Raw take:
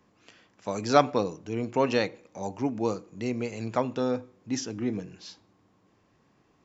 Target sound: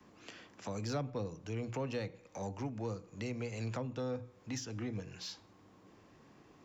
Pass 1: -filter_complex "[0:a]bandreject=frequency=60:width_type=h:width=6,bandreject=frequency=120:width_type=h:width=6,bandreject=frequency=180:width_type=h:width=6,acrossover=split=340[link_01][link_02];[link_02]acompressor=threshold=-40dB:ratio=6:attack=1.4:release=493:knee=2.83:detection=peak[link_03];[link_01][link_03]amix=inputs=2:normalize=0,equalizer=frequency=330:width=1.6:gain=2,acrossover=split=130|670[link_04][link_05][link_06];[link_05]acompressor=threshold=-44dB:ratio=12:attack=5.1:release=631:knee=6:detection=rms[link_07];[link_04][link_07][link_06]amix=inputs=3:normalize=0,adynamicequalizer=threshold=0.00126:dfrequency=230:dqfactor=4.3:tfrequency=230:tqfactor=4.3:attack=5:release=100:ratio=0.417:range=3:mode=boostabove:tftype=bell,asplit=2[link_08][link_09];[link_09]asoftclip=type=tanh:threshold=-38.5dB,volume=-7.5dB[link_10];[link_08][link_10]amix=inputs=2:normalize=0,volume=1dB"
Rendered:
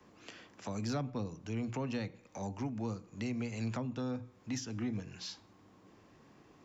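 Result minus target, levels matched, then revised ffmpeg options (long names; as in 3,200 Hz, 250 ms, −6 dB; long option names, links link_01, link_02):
500 Hz band −4.0 dB; soft clipping: distortion −6 dB
-filter_complex "[0:a]bandreject=frequency=60:width_type=h:width=6,bandreject=frequency=120:width_type=h:width=6,bandreject=frequency=180:width_type=h:width=6,acrossover=split=340[link_01][link_02];[link_02]acompressor=threshold=-40dB:ratio=6:attack=1.4:release=493:knee=2.83:detection=peak[link_03];[link_01][link_03]amix=inputs=2:normalize=0,equalizer=frequency=330:width=1.6:gain=2,acrossover=split=130|670[link_04][link_05][link_06];[link_05]acompressor=threshold=-44dB:ratio=12:attack=5.1:release=631:knee=6:detection=rms[link_07];[link_04][link_07][link_06]amix=inputs=3:normalize=0,adynamicequalizer=threshold=0.00126:dfrequency=500:dqfactor=4.3:tfrequency=500:tqfactor=4.3:attack=5:release=100:ratio=0.417:range=3:mode=boostabove:tftype=bell,asplit=2[link_08][link_09];[link_09]asoftclip=type=tanh:threshold=-46dB,volume=-7.5dB[link_10];[link_08][link_10]amix=inputs=2:normalize=0,volume=1dB"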